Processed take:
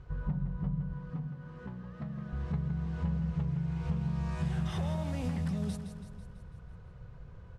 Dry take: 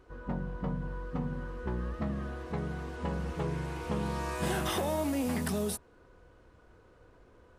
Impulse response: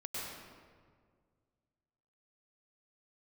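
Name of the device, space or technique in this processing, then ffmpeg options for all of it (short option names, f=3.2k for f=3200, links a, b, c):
jukebox: -filter_complex "[0:a]lowpass=6.3k,lowshelf=f=210:t=q:w=3:g=11,acompressor=threshold=-31dB:ratio=6,asettb=1/sr,asplit=3[a][b][c];[a]atrim=end=0.934[d];[b]atrim=start=0.93:end=2.33,asetpts=PTS-STARTPTS,afade=t=in:d=0.004:c=qsin,afade=t=out:st=1.396:d=0.004:c=qsin,highpass=190[e];[c]atrim=start=2.326[f];[d][e]acrossfade=d=0.004:c1=hsin:c2=qsin[g];[g][f]acrossfade=d=0.004:c1=qsin:c2=hsin,aecho=1:1:165|330|495|660|825|990|1155:0.355|0.199|0.111|0.0623|0.0349|0.0195|0.0109"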